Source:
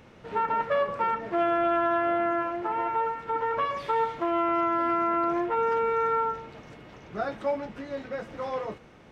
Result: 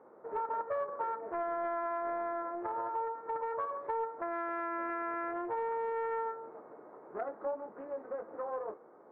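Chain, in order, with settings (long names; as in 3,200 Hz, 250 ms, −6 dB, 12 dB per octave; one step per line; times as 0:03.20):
adaptive Wiener filter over 15 samples
Chebyshev band-pass filter 390–1,200 Hz, order 2
downward compressor 2 to 1, threshold −38 dBFS, peak gain reduction 8.5 dB
highs frequency-modulated by the lows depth 0.25 ms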